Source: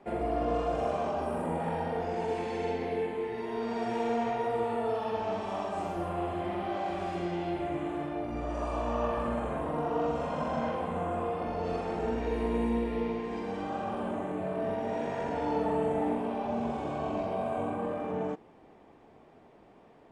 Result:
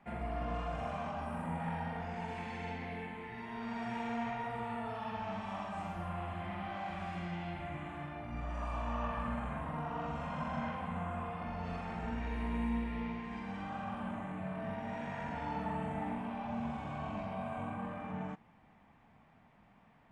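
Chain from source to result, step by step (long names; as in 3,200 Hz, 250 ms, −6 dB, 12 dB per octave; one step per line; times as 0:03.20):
drawn EQ curve 210 Hz 0 dB, 380 Hz −19 dB, 840 Hz −4 dB, 2,100 Hz +1 dB, 4,600 Hz −7 dB
level −1.5 dB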